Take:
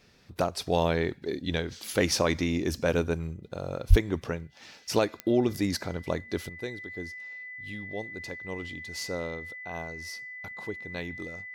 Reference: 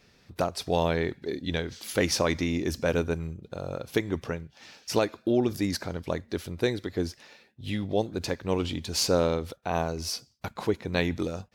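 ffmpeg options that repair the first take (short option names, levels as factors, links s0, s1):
-filter_complex "[0:a]adeclick=t=4,bandreject=f=2000:w=30,asplit=3[s0][s1][s2];[s0]afade=t=out:st=3.89:d=0.02[s3];[s1]highpass=f=140:w=0.5412,highpass=f=140:w=1.3066,afade=t=in:st=3.89:d=0.02,afade=t=out:st=4.01:d=0.02[s4];[s2]afade=t=in:st=4.01:d=0.02[s5];[s3][s4][s5]amix=inputs=3:normalize=0,asetnsamples=n=441:p=0,asendcmd='6.49 volume volume 10.5dB',volume=1"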